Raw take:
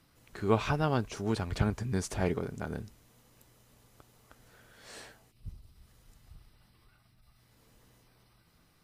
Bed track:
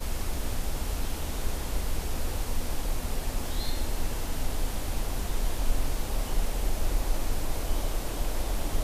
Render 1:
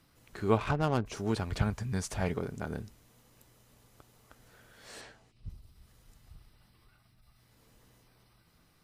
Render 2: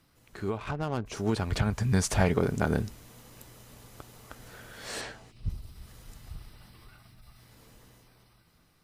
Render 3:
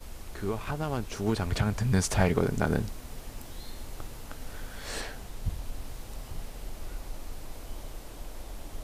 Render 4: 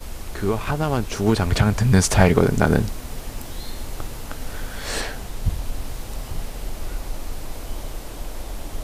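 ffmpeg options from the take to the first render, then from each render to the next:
-filter_complex "[0:a]asplit=3[s0][s1][s2];[s0]afade=t=out:st=0.57:d=0.02[s3];[s1]adynamicsmooth=sensitivity=6:basefreq=1100,afade=t=in:st=0.57:d=0.02,afade=t=out:st=1.05:d=0.02[s4];[s2]afade=t=in:st=1.05:d=0.02[s5];[s3][s4][s5]amix=inputs=3:normalize=0,asettb=1/sr,asplit=3[s6][s7][s8];[s6]atrim=end=1.604[s9];[s7]atrim=start=1.6:end=2.36,asetpts=PTS-STARTPTS,afade=t=in:d=0.004:c=qsin,afade=t=out:st=0.756:d=0.004:c=qsin,equalizer=f=340:t=o:w=0.77:g=-8[s10];[s8]atrim=start=2.356[s11];[s9][s10]acrossfade=d=0.004:c1=hsin:c2=qsin[s12];[s12][s11]acrossfade=d=0.004:c1=qsin:c2=hsin,asettb=1/sr,asplit=3[s13][s14][s15];[s13]atrim=end=5.014[s16];[s14]atrim=start=5.01:end=5.5,asetpts=PTS-STARTPTS,afade=t=in:d=0.004:c=qsin,afade=t=out:st=0.486:d=0.004:c=qsin,lowpass=6800[s17];[s15]atrim=start=5.496[s18];[s16][s17]acrossfade=d=0.004:c1=hsin:c2=qsin[s19];[s19][s18]acrossfade=d=0.004:c1=qsin:c2=hsin"
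-af "alimiter=limit=0.075:level=0:latency=1:release=238,dynaudnorm=f=470:g=7:m=3.55"
-filter_complex "[1:a]volume=0.266[s0];[0:a][s0]amix=inputs=2:normalize=0"
-af "volume=2.99"

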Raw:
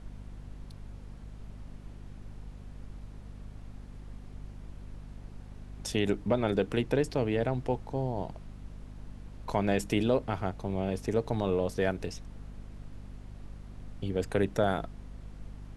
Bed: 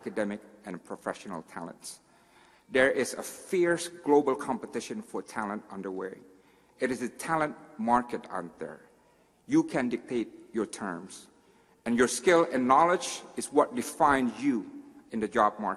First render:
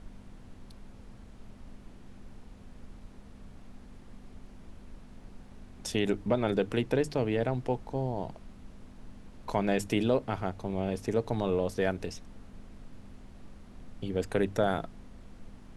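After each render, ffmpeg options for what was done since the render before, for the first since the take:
-af "bandreject=f=50:t=h:w=6,bandreject=f=100:t=h:w=6,bandreject=f=150:t=h:w=6"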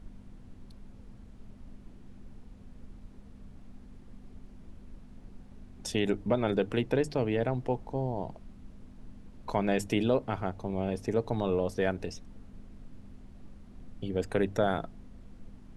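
-af "afftdn=nr=6:nf=-51"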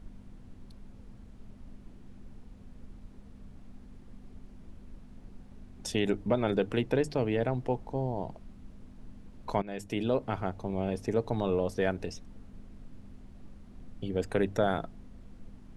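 -filter_complex "[0:a]asplit=2[s0][s1];[s0]atrim=end=9.62,asetpts=PTS-STARTPTS,afade=t=out:st=9.616:d=0.004:c=hsin:silence=0.141254[s2];[s1]atrim=start=9.62,asetpts=PTS-STARTPTS,afade=t=in:d=0.65:silence=0.141254[s3];[s2][s3]concat=n=2:v=0:a=1"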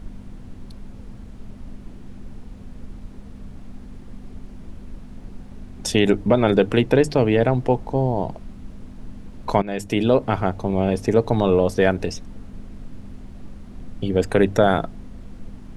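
-af "volume=3.76,alimiter=limit=0.708:level=0:latency=1"

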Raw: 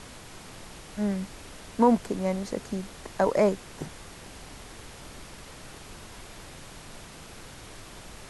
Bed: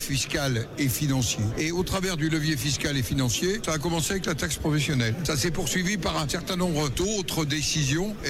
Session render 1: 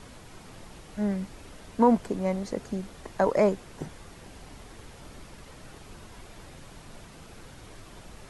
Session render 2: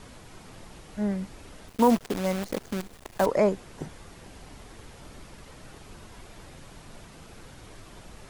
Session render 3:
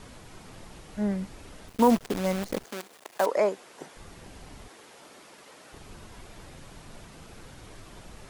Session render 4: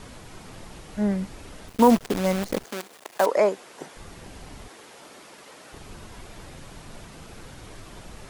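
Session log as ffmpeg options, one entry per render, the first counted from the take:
-af "afftdn=nr=6:nf=-46"
-filter_complex "[0:a]asettb=1/sr,asplit=3[s0][s1][s2];[s0]atrim=end=1.684[s3];[s1]atrim=start=1.68:end=3.26,asetpts=PTS-STARTPTS,afade=t=in:d=0.004:c=qsin,afade=t=out:st=1.576:d=0.004:c=qsin,acrusher=bits=6:dc=4:mix=0:aa=0.000001[s4];[s2]atrim=start=3.256[s5];[s3][s4]acrossfade=d=0.004:c1=hsin:c2=qsin[s6];[s6][s5]acrossfade=d=0.004:c1=qsin:c2=hsin"
-filter_complex "[0:a]asettb=1/sr,asplit=3[s0][s1][s2];[s0]atrim=end=2.644[s3];[s1]atrim=start=2.64:end=3.96,asetpts=PTS-STARTPTS,afade=t=in:d=0.004:c=qsin,afade=t=out:st=1.316:d=0.004:c=qsin,highpass=410[s4];[s2]atrim=start=3.956[s5];[s3][s4]acrossfade=d=0.004:c1=hsin:c2=qsin[s6];[s6][s5]acrossfade=d=0.004:c1=qsin:c2=hsin,asettb=1/sr,asplit=3[s7][s8][s9];[s7]atrim=end=4.684[s10];[s8]atrim=start=4.68:end=5.73,asetpts=PTS-STARTPTS,afade=t=in:d=0.004:c=qsin,afade=t=out:st=1.046:d=0.004:c=qsin,highpass=340[s11];[s9]atrim=start=5.726[s12];[s10][s11]acrossfade=d=0.004:c1=hsin:c2=qsin[s13];[s13][s12]acrossfade=d=0.004:c1=qsin:c2=hsin"
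-af "volume=1.58"

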